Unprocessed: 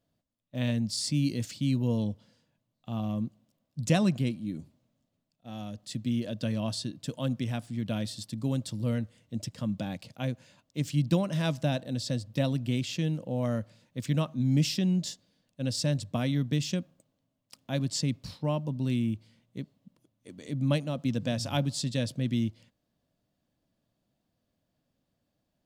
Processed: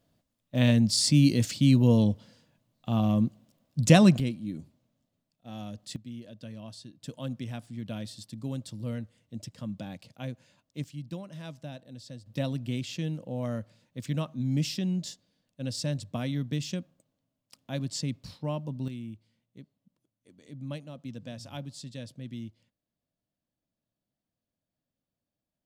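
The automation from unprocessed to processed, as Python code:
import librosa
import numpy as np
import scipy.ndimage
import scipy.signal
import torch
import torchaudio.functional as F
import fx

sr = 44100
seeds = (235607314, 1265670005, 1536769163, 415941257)

y = fx.gain(x, sr, db=fx.steps((0.0, 7.0), (4.2, -0.5), (5.96, -12.0), (7.02, -5.0), (10.84, -13.0), (12.26, -3.0), (18.88, -11.0)))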